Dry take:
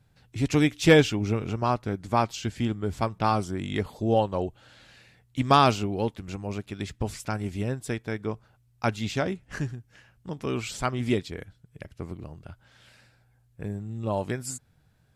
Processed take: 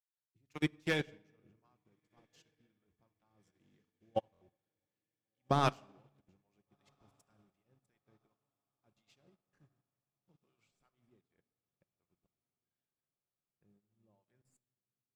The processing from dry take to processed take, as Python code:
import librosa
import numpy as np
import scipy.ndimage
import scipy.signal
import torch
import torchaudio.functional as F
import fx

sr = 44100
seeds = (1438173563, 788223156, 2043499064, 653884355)

p1 = fx.tracing_dist(x, sr, depth_ms=0.041)
p2 = fx.low_shelf(p1, sr, hz=78.0, db=-5.5)
p3 = fx.level_steps(p2, sr, step_db=20)
p4 = fx.harmonic_tremolo(p3, sr, hz=2.7, depth_pct=70, crossover_hz=650.0)
p5 = p4 + fx.echo_diffused(p4, sr, ms=1476, feedback_pct=63, wet_db=-15.5, dry=0)
p6 = fx.room_shoebox(p5, sr, seeds[0], volume_m3=3000.0, walls='mixed', distance_m=0.9)
p7 = fx.buffer_glitch(p6, sr, at_s=(4.32,), block=1024, repeats=3)
p8 = fx.upward_expand(p7, sr, threshold_db=-49.0, expansion=2.5)
y = p8 * librosa.db_to_amplitude(-2.5)